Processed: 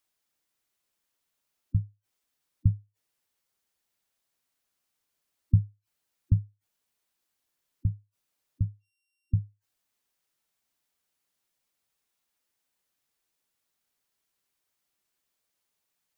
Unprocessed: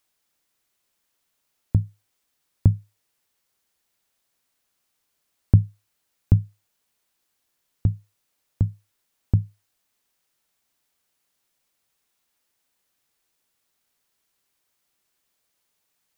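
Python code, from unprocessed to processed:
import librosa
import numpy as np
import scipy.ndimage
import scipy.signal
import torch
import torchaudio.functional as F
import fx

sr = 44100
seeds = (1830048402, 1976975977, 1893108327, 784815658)

y = fx.sample_sort(x, sr, block=16, at=(8.67, 9.42))
y = fx.spec_gate(y, sr, threshold_db=-15, keep='strong')
y = y * librosa.db_to_amplitude(-6.0)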